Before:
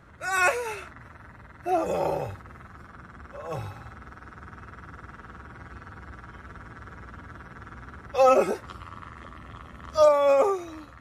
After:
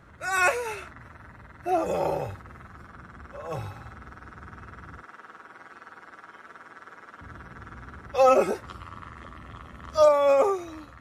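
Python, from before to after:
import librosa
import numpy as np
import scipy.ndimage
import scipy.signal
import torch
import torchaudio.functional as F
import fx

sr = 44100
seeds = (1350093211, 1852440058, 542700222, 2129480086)

y = fx.highpass(x, sr, hz=400.0, slope=12, at=(5.02, 7.21))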